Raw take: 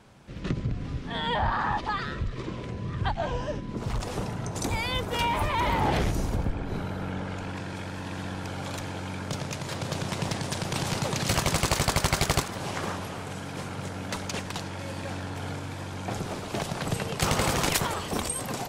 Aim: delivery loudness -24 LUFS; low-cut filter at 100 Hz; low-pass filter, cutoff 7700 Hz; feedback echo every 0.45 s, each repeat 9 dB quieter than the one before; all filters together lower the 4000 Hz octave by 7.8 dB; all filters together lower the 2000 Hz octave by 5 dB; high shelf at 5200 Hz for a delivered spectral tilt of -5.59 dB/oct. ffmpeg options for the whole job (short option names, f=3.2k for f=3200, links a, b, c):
-af "highpass=100,lowpass=7.7k,equalizer=f=2k:t=o:g=-4,equalizer=f=4k:t=o:g=-6,highshelf=f=5.2k:g=-6,aecho=1:1:450|900|1350|1800:0.355|0.124|0.0435|0.0152,volume=8dB"